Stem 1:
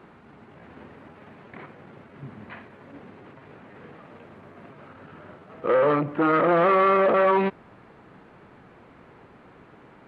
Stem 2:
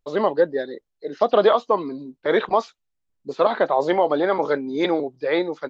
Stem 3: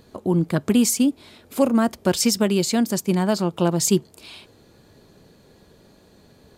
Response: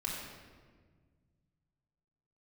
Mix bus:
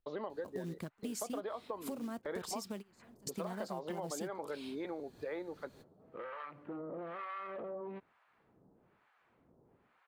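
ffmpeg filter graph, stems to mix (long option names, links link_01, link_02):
-filter_complex "[0:a]acrossover=split=790[link_01][link_02];[link_01]aeval=exprs='val(0)*(1-1/2+1/2*cos(2*PI*1.1*n/s))':channel_layout=same[link_03];[link_02]aeval=exprs='val(0)*(1-1/2-1/2*cos(2*PI*1.1*n/s))':channel_layout=same[link_04];[link_03][link_04]amix=inputs=2:normalize=0,adelay=500,volume=-14.5dB[link_05];[1:a]lowpass=4400,acrossover=split=1100|2400[link_06][link_07][link_08];[link_06]acompressor=threshold=-18dB:ratio=4[link_09];[link_07]acompressor=threshold=-29dB:ratio=4[link_10];[link_08]acompressor=threshold=-46dB:ratio=4[link_11];[link_09][link_10][link_11]amix=inputs=3:normalize=0,volume=-7.5dB,asplit=2[link_12][link_13];[2:a]alimiter=limit=-11.5dB:level=0:latency=1:release=115,acompressor=threshold=-30dB:ratio=2,acrusher=bits=5:mode=log:mix=0:aa=0.000001,adelay=300,volume=-3dB[link_14];[link_13]apad=whole_len=303102[link_15];[link_14][link_15]sidechaingate=range=-33dB:threshold=-54dB:ratio=16:detection=peak[link_16];[link_05][link_12][link_16]amix=inputs=3:normalize=0,acompressor=threshold=-42dB:ratio=3"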